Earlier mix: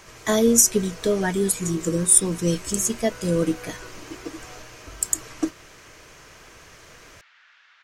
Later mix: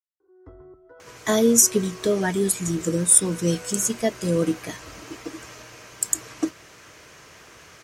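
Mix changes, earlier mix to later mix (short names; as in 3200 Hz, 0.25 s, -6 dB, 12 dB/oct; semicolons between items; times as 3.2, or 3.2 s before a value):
speech: entry +1.00 s; master: add HPF 75 Hz 12 dB/oct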